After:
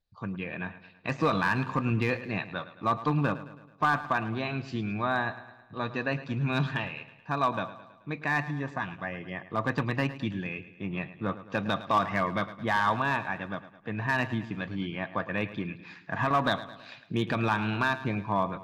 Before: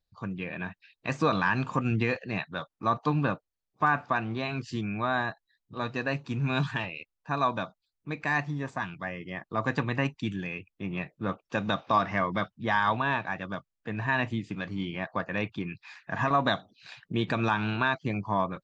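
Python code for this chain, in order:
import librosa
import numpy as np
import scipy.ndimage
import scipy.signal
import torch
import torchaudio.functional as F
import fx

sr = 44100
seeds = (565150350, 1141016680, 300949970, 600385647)

y = scipy.signal.sosfilt(scipy.signal.butter(2, 4700.0, 'lowpass', fs=sr, output='sos'), x)
y = np.clip(y, -10.0 ** (-17.5 / 20.0), 10.0 ** (-17.5 / 20.0))
y = fx.echo_feedback(y, sr, ms=108, feedback_pct=53, wet_db=-15.0)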